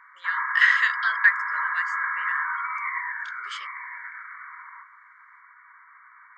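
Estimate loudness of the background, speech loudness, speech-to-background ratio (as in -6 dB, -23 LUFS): -28.5 LUFS, -23.5 LUFS, 5.0 dB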